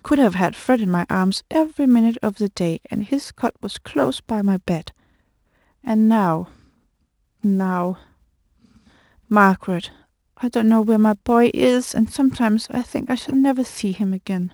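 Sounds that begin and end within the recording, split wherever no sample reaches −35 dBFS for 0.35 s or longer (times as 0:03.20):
0:05.86–0:06.45
0:07.44–0:07.95
0:09.31–0:09.90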